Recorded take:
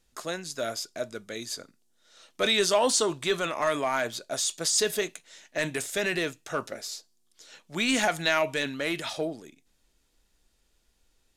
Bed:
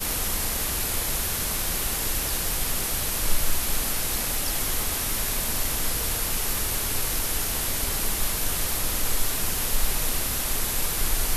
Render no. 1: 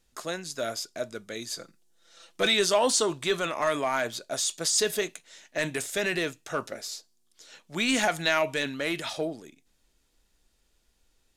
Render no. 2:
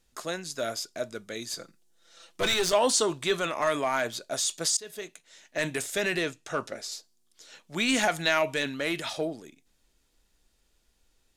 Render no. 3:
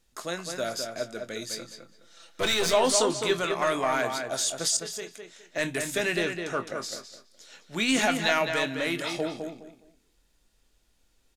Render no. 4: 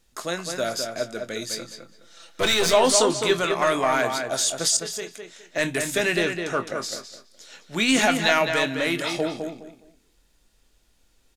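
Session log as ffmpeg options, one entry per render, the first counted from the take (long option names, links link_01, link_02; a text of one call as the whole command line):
ffmpeg -i in.wav -filter_complex "[0:a]asettb=1/sr,asplit=3[link_01][link_02][link_03];[link_01]atrim=end=1.564[link_04];[link_02]atrim=start=1.56:end=2.54,asetpts=PTS-STARTPTS,afade=type=in:duration=0.004:curve=qsin,afade=type=out:start_time=0.976:duration=0.004:curve=qsin,aecho=1:1:5.9:0.68,atrim=end_sample=43218[link_05];[link_03]atrim=start=2.536[link_06];[link_04][link_05]acrossfade=duration=0.004:curve1=hsin:curve2=qsin[link_07];[link_07][link_06]acrossfade=duration=0.004:curve1=qsin:curve2=hsin" out.wav
ffmpeg -i in.wav -filter_complex "[0:a]asettb=1/sr,asplit=3[link_01][link_02][link_03];[link_01]atrim=end=1.494[link_04];[link_02]atrim=start=1.49:end=2.73,asetpts=PTS-STARTPTS,afade=type=in:duration=0.004:curve=qsin,afade=type=out:start_time=1.236:duration=0.004:curve=qsin,aeval=exprs='clip(val(0),-1,0.0422)':channel_layout=same[link_05];[link_03]atrim=start=2.726[link_06];[link_04][link_05]acrossfade=duration=0.004:curve1=hsin:curve2=qsin[link_07];[link_07][link_06]acrossfade=duration=0.004:curve1=qsin:curve2=hsin,asettb=1/sr,asplit=3[link_08][link_09][link_10];[link_08]atrim=end=6.214[link_11];[link_09]atrim=start=6.21:end=6.92,asetpts=PTS-STARTPTS,afade=type=in:duration=0.004:curve=qsin,afade=type=out:start_time=0.706:duration=0.004:curve=qsin,lowpass=10000[link_12];[link_10]atrim=start=6.916[link_13];[link_11][link_12]acrossfade=duration=0.004:curve1=hsin:curve2=qsin[link_14];[link_14][link_13]acrossfade=duration=0.004:curve1=qsin:curve2=hsin,asplit=2[link_15][link_16];[link_15]atrim=end=4.77,asetpts=PTS-STARTPTS,afade=type=out:start_time=4.766:duration=0.004:curve=hsin:silence=0.0707946[link_17];[link_16]atrim=start=4.77,asetpts=PTS-STARTPTS,afade=type=in:duration=0.88:silence=0.0707946[link_18];[link_17][link_18]concat=n=2:v=0:a=1" out.wav
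ffmpeg -i in.wav -filter_complex "[0:a]asplit=2[link_01][link_02];[link_02]adelay=23,volume=-10.5dB[link_03];[link_01][link_03]amix=inputs=2:normalize=0,asplit=2[link_04][link_05];[link_05]adelay=208,lowpass=frequency=3100:poles=1,volume=-5.5dB,asplit=2[link_06][link_07];[link_07]adelay=208,lowpass=frequency=3100:poles=1,volume=0.25,asplit=2[link_08][link_09];[link_09]adelay=208,lowpass=frequency=3100:poles=1,volume=0.25[link_10];[link_06][link_08][link_10]amix=inputs=3:normalize=0[link_11];[link_04][link_11]amix=inputs=2:normalize=0" out.wav
ffmpeg -i in.wav -af "volume=4.5dB" out.wav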